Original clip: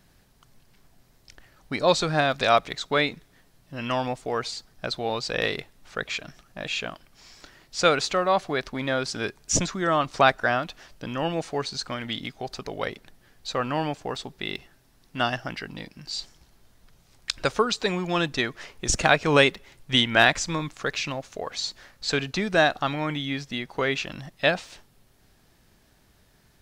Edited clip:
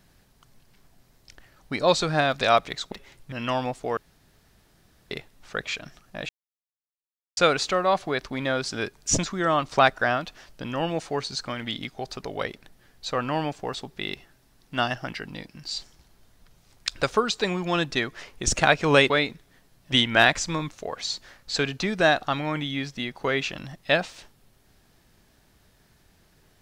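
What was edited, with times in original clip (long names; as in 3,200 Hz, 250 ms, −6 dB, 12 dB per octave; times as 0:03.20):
0:02.92–0:03.74: swap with 0:19.52–0:19.92
0:04.39–0:05.53: fill with room tone
0:06.71–0:07.79: silence
0:20.73–0:21.27: remove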